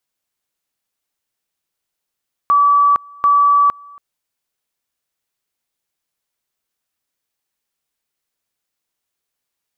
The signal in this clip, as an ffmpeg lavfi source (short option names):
-f lavfi -i "aevalsrc='pow(10,(-8.5-27.5*gte(mod(t,0.74),0.46))/20)*sin(2*PI*1150*t)':d=1.48:s=44100"